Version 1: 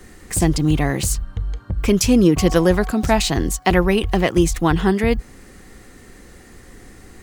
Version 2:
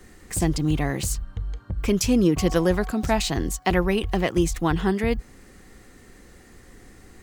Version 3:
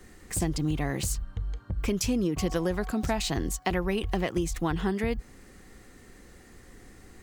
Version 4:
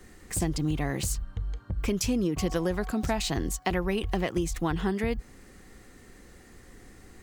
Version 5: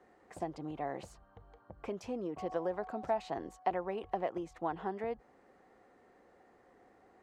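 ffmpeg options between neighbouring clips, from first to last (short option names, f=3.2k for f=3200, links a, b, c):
-af "equalizer=f=9.7k:w=6.2:g=-2.5,volume=-5.5dB"
-af "acompressor=threshold=-21dB:ratio=6,volume=-2.5dB"
-af anull
-af "bandpass=f=710:t=q:w=2:csg=0"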